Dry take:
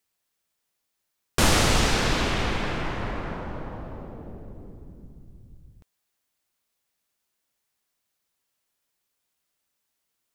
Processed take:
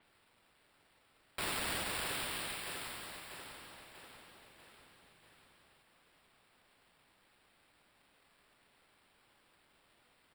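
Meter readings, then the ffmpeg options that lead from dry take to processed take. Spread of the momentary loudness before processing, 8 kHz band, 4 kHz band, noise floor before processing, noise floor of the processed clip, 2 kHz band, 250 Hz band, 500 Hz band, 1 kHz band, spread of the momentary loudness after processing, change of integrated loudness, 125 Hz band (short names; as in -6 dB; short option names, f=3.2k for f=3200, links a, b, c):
22 LU, -13.0 dB, -13.0 dB, -79 dBFS, -71 dBFS, -13.0 dB, -22.0 dB, -18.5 dB, -15.5 dB, 21 LU, -15.0 dB, -25.5 dB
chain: -filter_complex "[0:a]aderivative,acompressor=mode=upward:threshold=-56dB:ratio=2.5,acrusher=samples=7:mix=1:aa=0.000001,asplit=2[a][b];[b]aecho=0:1:642|1284|1926|2568|3210|3852:0.266|0.146|0.0805|0.0443|0.0243|0.0134[c];[a][c]amix=inputs=2:normalize=0,alimiter=level_in=1dB:limit=-24dB:level=0:latency=1:release=259,volume=-1dB,adynamicequalizer=threshold=0.00355:dfrequency=4700:dqfactor=0.7:tfrequency=4700:tqfactor=0.7:attack=5:release=100:ratio=0.375:range=2.5:mode=boostabove:tftype=highshelf,volume=-4dB"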